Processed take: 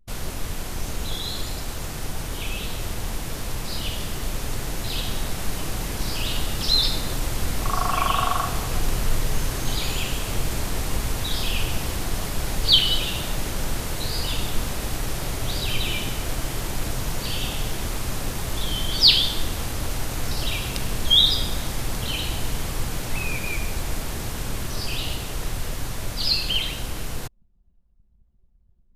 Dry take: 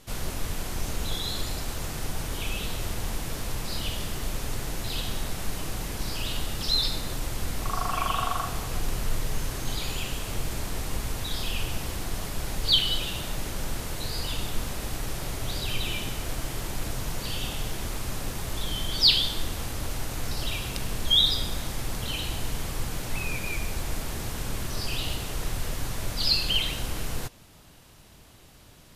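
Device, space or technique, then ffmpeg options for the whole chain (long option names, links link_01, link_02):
voice memo with heavy noise removal: -af "anlmdn=0.398,dynaudnorm=framelen=810:gausssize=13:maxgain=4.5dB,volume=1.5dB"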